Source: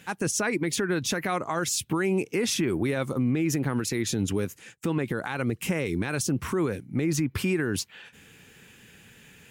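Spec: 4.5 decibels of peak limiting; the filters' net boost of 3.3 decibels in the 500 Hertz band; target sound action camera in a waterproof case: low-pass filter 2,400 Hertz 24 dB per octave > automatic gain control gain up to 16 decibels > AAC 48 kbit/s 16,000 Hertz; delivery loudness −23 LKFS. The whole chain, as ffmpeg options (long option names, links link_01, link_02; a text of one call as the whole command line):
ffmpeg -i in.wav -af "equalizer=frequency=500:width_type=o:gain=4.5,alimiter=limit=-19dB:level=0:latency=1,lowpass=frequency=2400:width=0.5412,lowpass=frequency=2400:width=1.3066,dynaudnorm=maxgain=16dB,volume=6.5dB" -ar 16000 -c:a aac -b:a 48k out.aac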